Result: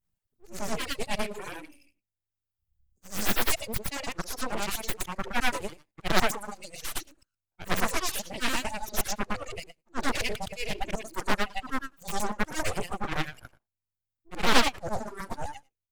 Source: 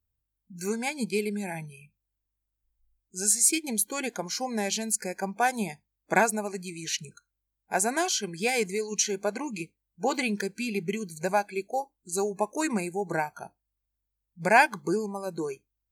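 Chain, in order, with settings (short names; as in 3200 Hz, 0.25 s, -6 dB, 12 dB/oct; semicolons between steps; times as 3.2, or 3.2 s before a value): short-time reversal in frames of 0.24 s; high shelf 11000 Hz -2.5 dB; full-wave rectifier; reverb removal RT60 1.6 s; Doppler distortion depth 0.87 ms; gain +6.5 dB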